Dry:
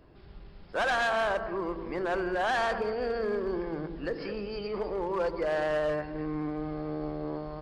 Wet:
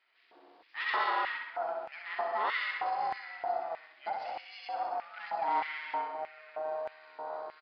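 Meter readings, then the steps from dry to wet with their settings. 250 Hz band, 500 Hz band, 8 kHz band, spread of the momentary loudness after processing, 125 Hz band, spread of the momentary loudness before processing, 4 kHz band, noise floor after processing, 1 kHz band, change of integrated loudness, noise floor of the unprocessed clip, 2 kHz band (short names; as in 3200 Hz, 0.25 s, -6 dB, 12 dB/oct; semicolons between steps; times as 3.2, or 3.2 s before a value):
-22.0 dB, -10.0 dB, n/a, 11 LU, under -25 dB, 8 LU, -3.0 dB, -66 dBFS, +1.0 dB, -4.0 dB, -50 dBFS, -3.0 dB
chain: ring modulator 320 Hz; on a send: feedback echo 64 ms, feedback 52%, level -4 dB; on the sum: downsampling 11025 Hz; LFO high-pass square 1.6 Hz 730–2100 Hz; gain -4 dB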